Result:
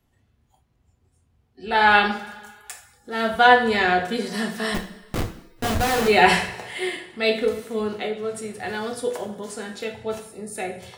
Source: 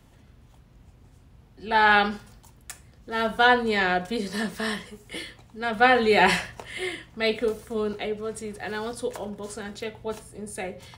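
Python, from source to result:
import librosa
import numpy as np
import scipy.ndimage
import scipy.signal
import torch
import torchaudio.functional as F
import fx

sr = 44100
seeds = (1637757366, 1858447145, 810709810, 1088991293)

y = fx.schmitt(x, sr, flips_db=-28.0, at=(4.74, 6.08))
y = fx.rev_double_slope(y, sr, seeds[0], early_s=0.45, late_s=1.8, knee_db=-16, drr_db=3.5)
y = fx.noise_reduce_blind(y, sr, reduce_db=15)
y = y * librosa.db_to_amplitude(1.5)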